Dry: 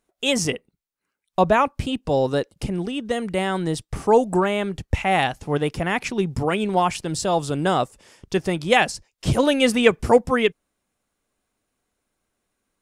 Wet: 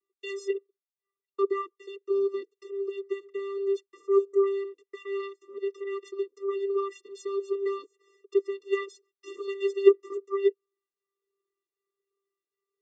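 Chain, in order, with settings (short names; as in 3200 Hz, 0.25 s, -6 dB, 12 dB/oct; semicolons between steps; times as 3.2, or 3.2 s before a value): dynamic EQ 1500 Hz, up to -6 dB, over -33 dBFS, Q 1.1; vocoder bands 16, square 395 Hz; cascading flanger falling 1.3 Hz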